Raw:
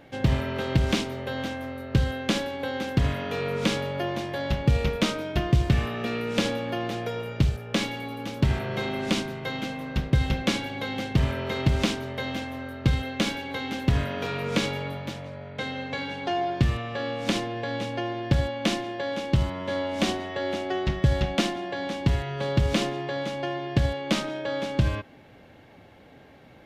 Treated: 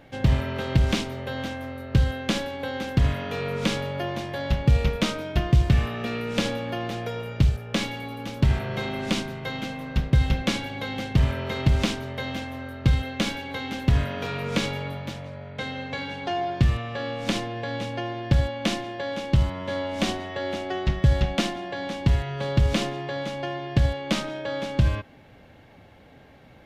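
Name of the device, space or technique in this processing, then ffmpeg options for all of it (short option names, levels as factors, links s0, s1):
low shelf boost with a cut just above: -af "lowshelf=f=73:g=7.5,equalizer=f=350:t=o:w=0.77:g=-2.5"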